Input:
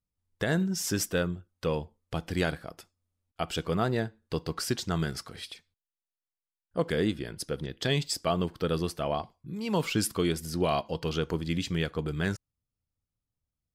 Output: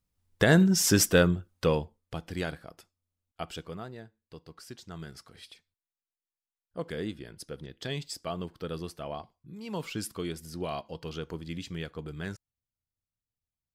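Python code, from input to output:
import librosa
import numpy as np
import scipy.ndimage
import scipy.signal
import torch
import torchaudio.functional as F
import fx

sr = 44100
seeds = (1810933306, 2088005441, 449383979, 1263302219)

y = fx.gain(x, sr, db=fx.line((1.52, 7.0), (2.21, -5.0), (3.43, -5.0), (3.95, -16.0), (4.65, -16.0), (5.51, -7.5)))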